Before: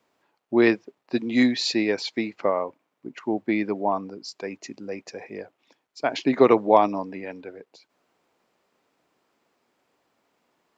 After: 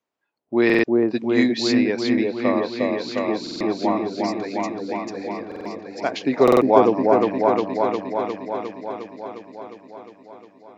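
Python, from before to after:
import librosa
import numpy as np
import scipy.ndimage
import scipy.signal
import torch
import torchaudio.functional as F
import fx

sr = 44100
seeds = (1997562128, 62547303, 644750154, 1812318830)

y = fx.echo_opening(x, sr, ms=356, hz=750, octaves=1, feedback_pct=70, wet_db=0)
y = fx.noise_reduce_blind(y, sr, reduce_db=14)
y = fx.buffer_glitch(y, sr, at_s=(0.65, 3.42, 5.47, 6.43), block=2048, repeats=3)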